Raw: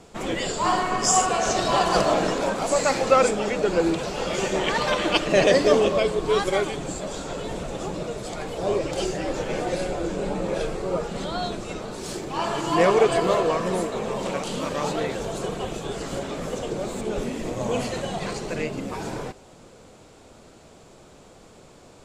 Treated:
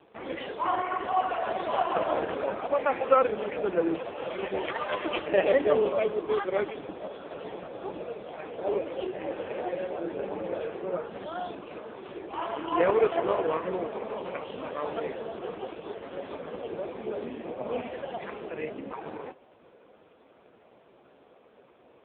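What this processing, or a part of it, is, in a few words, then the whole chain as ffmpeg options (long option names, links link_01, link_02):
telephone: -filter_complex "[0:a]asettb=1/sr,asplit=3[link_01][link_02][link_03];[link_01]atrim=end=11.004[link_04];[link_02]atrim=start=11:end=12.9,asetpts=PTS-STARTPTS,afade=type=in:duration=0.004:curve=qsin,afade=type=out:start_time=1.896:duration=0.004:curve=qsin,acrossover=split=5800[link_05][link_06];[link_06]acompressor=threshold=-46dB:ratio=4:attack=1:release=60[link_07];[link_05][link_07]amix=inputs=2:normalize=0[link_08];[link_03]atrim=start=12.896[link_09];[link_04][link_08]acrossfade=duration=0.004:curve1=hsin:curve2=qsin[link_10];[link_10][link_09]acrossfade=duration=0.004:curve1=qsin:curve2=hsin,highpass=270,lowpass=3200,volume=-2.5dB" -ar 8000 -c:a libopencore_amrnb -b:a 4750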